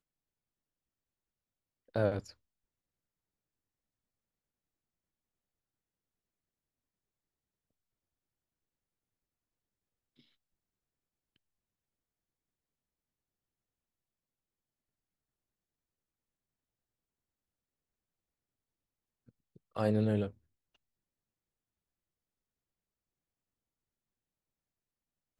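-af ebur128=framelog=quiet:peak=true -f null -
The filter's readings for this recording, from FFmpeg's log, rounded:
Integrated loudness:
  I:         -33.3 LUFS
  Threshold: -44.9 LUFS
Loudness range:
  LRA:         4.4 LU
  Threshold: -59.9 LUFS
  LRA low:   -42.7 LUFS
  LRA high:  -38.2 LUFS
True peak:
  Peak:      -16.7 dBFS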